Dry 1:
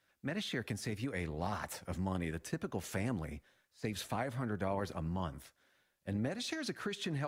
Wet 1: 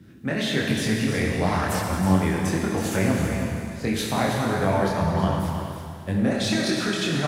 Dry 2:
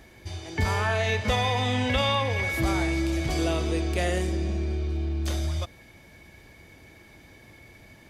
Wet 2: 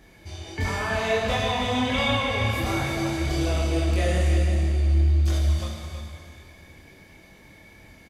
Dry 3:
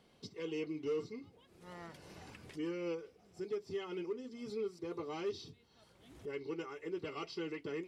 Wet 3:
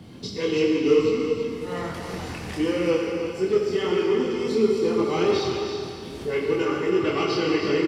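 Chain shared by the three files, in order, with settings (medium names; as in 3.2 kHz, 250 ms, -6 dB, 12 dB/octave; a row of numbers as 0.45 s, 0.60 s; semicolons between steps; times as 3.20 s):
Schroeder reverb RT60 2.5 s, combs from 28 ms, DRR 0.5 dB; chorus voices 2, 1.4 Hz, delay 24 ms, depth 3 ms; band noise 71–310 Hz -64 dBFS; on a send: delay 324 ms -8.5 dB; on the sum: normalise loudness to -24 LUFS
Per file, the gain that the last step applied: +15.0 dB, +1.0 dB, +19.0 dB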